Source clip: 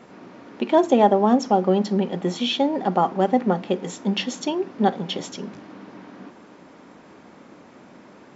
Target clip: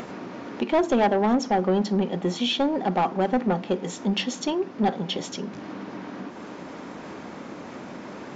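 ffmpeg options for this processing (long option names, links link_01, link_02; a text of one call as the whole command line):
ffmpeg -i in.wav -af "aresample=16000,asoftclip=type=tanh:threshold=-15dB,aresample=44100,acompressor=mode=upward:threshold=-28dB:ratio=2.5" out.wav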